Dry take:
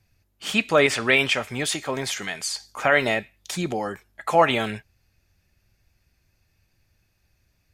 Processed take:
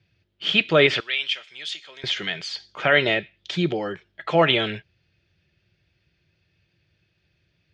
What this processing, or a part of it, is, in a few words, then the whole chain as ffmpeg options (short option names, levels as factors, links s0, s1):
guitar cabinet: -filter_complex "[0:a]highpass=91,equalizer=f=160:t=q:w=4:g=7,equalizer=f=240:t=q:w=4:g=-8,equalizer=f=350:t=q:w=4:g=5,equalizer=f=800:t=q:w=4:g=-7,equalizer=f=1100:t=q:w=4:g=-6,equalizer=f=3200:t=q:w=4:g=8,lowpass=f=4500:w=0.5412,lowpass=f=4500:w=1.3066,asettb=1/sr,asplit=3[s0][s1][s2];[s0]atrim=end=1.004[s3];[s1]atrim=start=1:end=2.04,asetpts=PTS-STARTPTS,afade=t=in:d=0.004:c=qsin,afade=t=out:st=1.036:d=0.004:c=qsin,aderivative[s4];[s2]atrim=start=2.036[s5];[s3][s4]acrossfade=d=0.004:c1=hsin:c2=qsin[s6];[s6][s5]acrossfade=d=0.004:c1=qsin:c2=hsin,volume=1.19"